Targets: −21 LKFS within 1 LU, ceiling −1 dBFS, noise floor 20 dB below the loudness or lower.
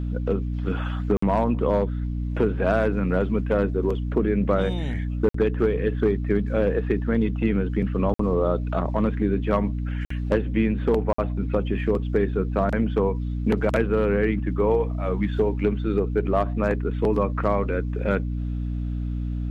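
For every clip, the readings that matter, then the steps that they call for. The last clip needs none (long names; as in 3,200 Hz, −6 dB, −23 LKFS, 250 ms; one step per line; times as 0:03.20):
number of dropouts 5; longest dropout 54 ms; mains hum 60 Hz; hum harmonics up to 300 Hz; level of the hum −25 dBFS; integrated loudness −24.0 LKFS; sample peak −10.0 dBFS; target loudness −21.0 LKFS
→ repair the gap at 0:01.17/0:05.29/0:08.14/0:10.05/0:11.13, 54 ms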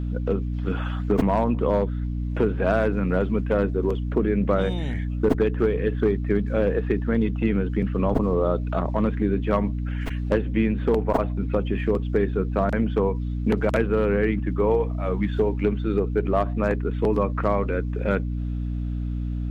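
number of dropouts 0; mains hum 60 Hz; hum harmonics up to 300 Hz; level of the hum −25 dBFS
→ hum removal 60 Hz, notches 5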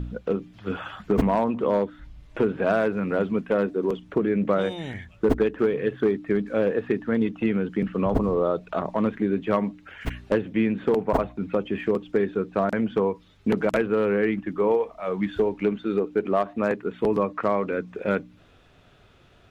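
mains hum none found; integrated loudness −25.0 LKFS; sample peak −6.0 dBFS; target loudness −21.0 LKFS
→ level +4 dB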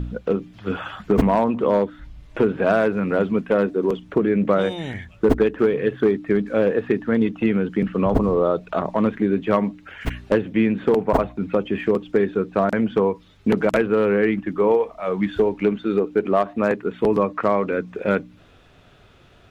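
integrated loudness −21.0 LKFS; sample peak −2.0 dBFS; background noise floor −51 dBFS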